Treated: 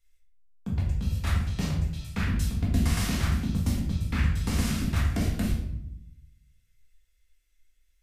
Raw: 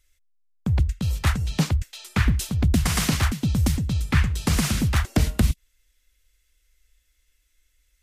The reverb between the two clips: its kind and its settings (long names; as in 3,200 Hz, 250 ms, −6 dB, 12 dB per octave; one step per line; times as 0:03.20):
rectangular room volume 200 cubic metres, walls mixed, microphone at 1.7 metres
level −12.5 dB